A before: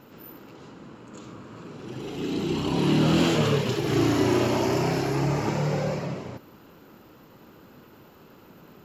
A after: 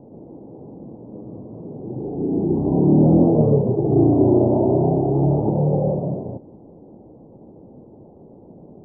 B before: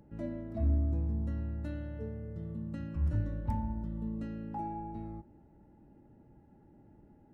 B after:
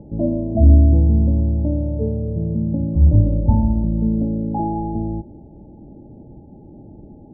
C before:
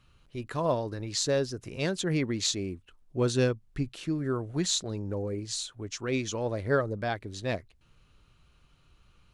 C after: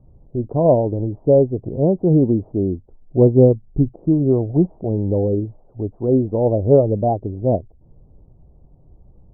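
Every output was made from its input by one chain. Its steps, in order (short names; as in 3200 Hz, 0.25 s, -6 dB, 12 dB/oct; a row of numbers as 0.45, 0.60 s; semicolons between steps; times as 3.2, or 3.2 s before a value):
steep low-pass 790 Hz 48 dB/oct; match loudness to -18 LUFS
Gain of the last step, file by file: +7.5, +18.5, +14.0 dB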